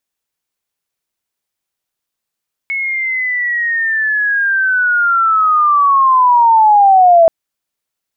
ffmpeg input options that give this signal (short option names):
-f lavfi -i "aevalsrc='pow(10,(-15.5+12*t/4.58)/20)*sin(2*PI*(2200*t-1550*t*t/(2*4.58)))':d=4.58:s=44100"